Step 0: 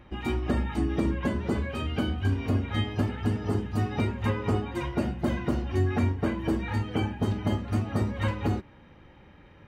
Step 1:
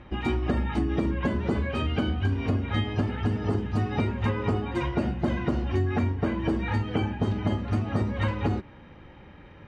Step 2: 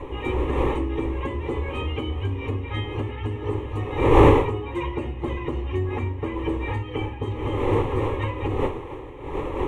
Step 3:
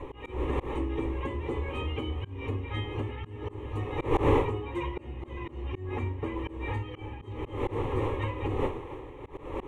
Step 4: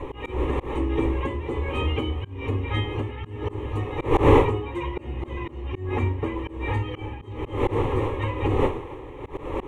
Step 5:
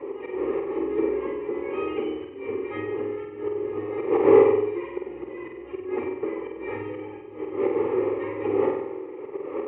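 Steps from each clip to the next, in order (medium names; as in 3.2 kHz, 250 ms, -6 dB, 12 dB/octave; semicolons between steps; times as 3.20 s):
Bessel low-pass 5 kHz, order 2; compression, threshold -26 dBFS, peak gain reduction 6 dB; trim +4.5 dB
wind noise 550 Hz -25 dBFS; static phaser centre 1 kHz, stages 8; trim +2 dB
slow attack 182 ms; trim -5 dB
tremolo triangle 1.2 Hz, depth 50%; trim +8.5 dB
cabinet simulation 390–2000 Hz, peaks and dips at 390 Hz +8 dB, 670 Hz -9 dB, 990 Hz -10 dB, 1.6 kHz -8 dB; flutter echo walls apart 8.2 m, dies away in 0.74 s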